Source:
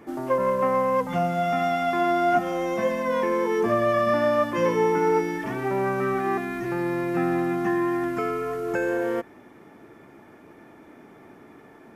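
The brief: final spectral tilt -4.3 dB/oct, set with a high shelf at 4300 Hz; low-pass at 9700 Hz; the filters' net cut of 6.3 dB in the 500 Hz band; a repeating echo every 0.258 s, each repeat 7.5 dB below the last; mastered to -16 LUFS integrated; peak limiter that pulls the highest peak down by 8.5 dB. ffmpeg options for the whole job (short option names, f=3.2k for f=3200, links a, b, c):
-af "lowpass=9.7k,equalizer=f=500:t=o:g=-8.5,highshelf=f=4.3k:g=5,alimiter=limit=-21.5dB:level=0:latency=1,aecho=1:1:258|516|774|1032|1290:0.422|0.177|0.0744|0.0312|0.0131,volume=13.5dB"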